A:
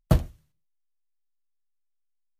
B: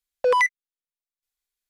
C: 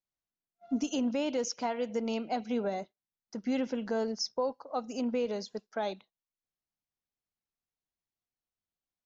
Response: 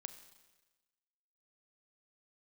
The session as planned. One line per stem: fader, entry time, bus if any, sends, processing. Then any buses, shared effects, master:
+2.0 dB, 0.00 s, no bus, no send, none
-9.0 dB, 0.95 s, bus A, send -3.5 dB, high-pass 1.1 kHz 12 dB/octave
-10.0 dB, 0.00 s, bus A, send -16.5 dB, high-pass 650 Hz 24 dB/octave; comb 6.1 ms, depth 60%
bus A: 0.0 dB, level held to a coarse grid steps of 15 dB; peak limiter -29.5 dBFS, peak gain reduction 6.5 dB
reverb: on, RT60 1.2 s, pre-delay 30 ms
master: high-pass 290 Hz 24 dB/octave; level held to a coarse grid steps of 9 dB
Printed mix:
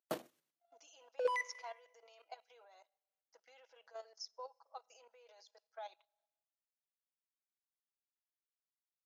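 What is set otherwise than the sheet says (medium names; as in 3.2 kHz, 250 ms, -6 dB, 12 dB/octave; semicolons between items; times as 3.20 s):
stem A +2.0 dB -> -6.0 dB; stem B: missing high-pass 1.1 kHz 12 dB/octave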